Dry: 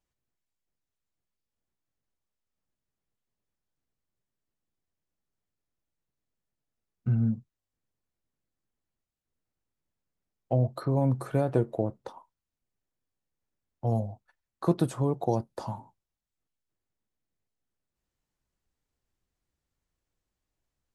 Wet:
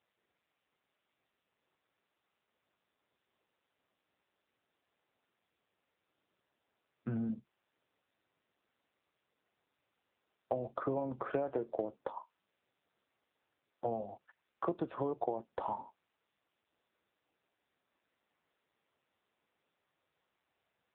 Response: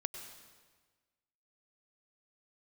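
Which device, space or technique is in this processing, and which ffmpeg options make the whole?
voicemail: -af "highpass=350,lowpass=2800,acompressor=threshold=-36dB:ratio=10,volume=5.5dB" -ar 8000 -c:a libopencore_amrnb -b:a 6700

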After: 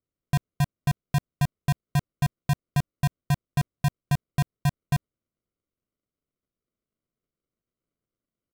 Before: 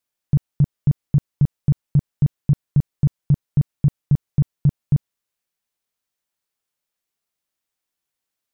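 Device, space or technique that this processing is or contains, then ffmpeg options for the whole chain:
crushed at another speed: -af "asetrate=55125,aresample=44100,acrusher=samples=41:mix=1:aa=0.000001,asetrate=35280,aresample=44100,volume=-7dB"

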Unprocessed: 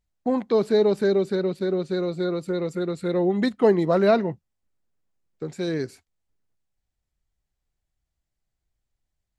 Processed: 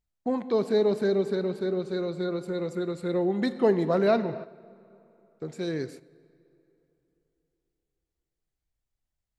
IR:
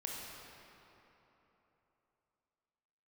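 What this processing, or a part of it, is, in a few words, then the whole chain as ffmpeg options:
keyed gated reverb: -filter_complex "[0:a]asplit=3[link_01][link_02][link_03];[1:a]atrim=start_sample=2205[link_04];[link_02][link_04]afir=irnorm=-1:irlink=0[link_05];[link_03]apad=whole_len=413861[link_06];[link_05][link_06]sidechaingate=range=-10dB:threshold=-42dB:ratio=16:detection=peak,volume=-8.5dB[link_07];[link_01][link_07]amix=inputs=2:normalize=0,volume=-6dB"

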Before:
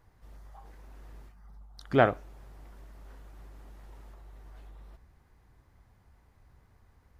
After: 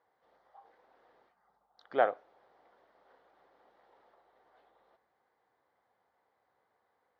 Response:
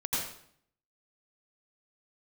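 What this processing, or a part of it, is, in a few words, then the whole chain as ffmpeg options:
phone earpiece: -af "highpass=480,equalizer=frequency=500:width_type=q:width=4:gain=7,equalizer=frequency=760:width_type=q:width=4:gain=5,equalizer=frequency=2600:width_type=q:width=4:gain=-8,lowpass=frequency=4000:width=0.5412,lowpass=frequency=4000:width=1.3066,volume=-6.5dB"

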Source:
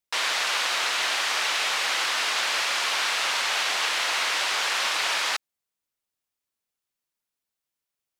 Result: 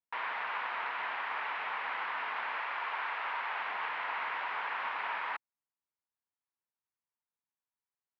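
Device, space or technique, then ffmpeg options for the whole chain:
bass cabinet: -filter_complex "[0:a]highpass=78,equalizer=frequency=340:width_type=q:width=4:gain=-6,equalizer=frequency=560:width_type=q:width=4:gain=-5,equalizer=frequency=950:width_type=q:width=4:gain=7,lowpass=frequency=2200:width=0.5412,lowpass=frequency=2200:width=1.3066,asettb=1/sr,asplit=3[link_01][link_02][link_03];[link_01]atrim=end=2.564[link_04];[link_02]atrim=start=2.56:end=3.6,asetpts=PTS-STARTPTS,afade=type=in:duration=0.004:curve=qsin,afade=type=out:start_time=1.036:duration=0.004:curve=qsin,highpass=280[link_05];[link_03]atrim=start=3.596[link_06];[link_04][link_05]acrossfade=duration=0.004:curve1=hsin:curve2=qsin[link_07];[link_07][link_06]acrossfade=duration=0.004:curve1=qsin:curve2=hsin,volume=-8.5dB"

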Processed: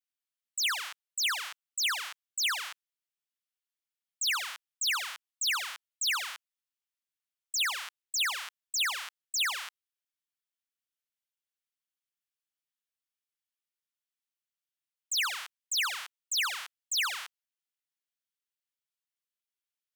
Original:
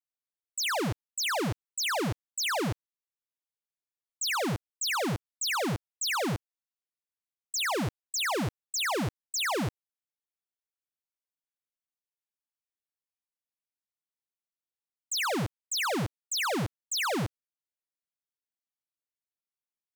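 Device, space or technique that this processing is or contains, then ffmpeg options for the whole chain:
headphones lying on a table: -af "highpass=frequency=1200:width=0.5412,highpass=frequency=1200:width=1.3066,equalizer=frequency=3100:width_type=o:width=0.5:gain=4"

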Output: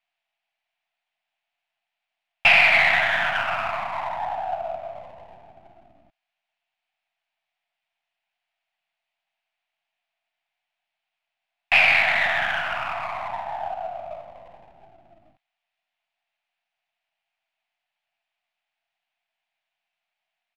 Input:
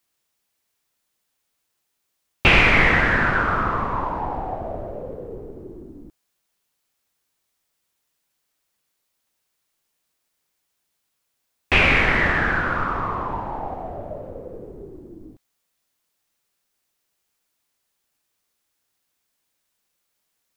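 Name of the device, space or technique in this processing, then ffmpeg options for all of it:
crystal radio: -af "highpass=210,lowpass=2600,aeval=exprs='if(lt(val(0),0),0.447*val(0),val(0))':channel_layout=same,firequalizer=gain_entry='entry(130,0);entry(270,-13);entry(450,-24);entry(670,13);entry(1100,0);entry(2500,13);entry(4100,7);entry(6000,3)':delay=0.05:min_phase=1,volume=-5dB"

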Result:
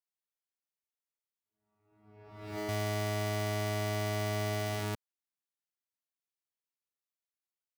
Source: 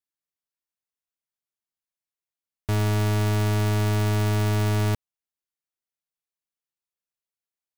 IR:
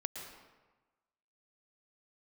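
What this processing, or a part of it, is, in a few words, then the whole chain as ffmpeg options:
ghost voice: -filter_complex "[0:a]lowshelf=frequency=180:gain=4.5,areverse[link_01];[1:a]atrim=start_sample=2205[link_02];[link_01][link_02]afir=irnorm=-1:irlink=0,areverse,highpass=frequency=340:poles=1,volume=-5.5dB"

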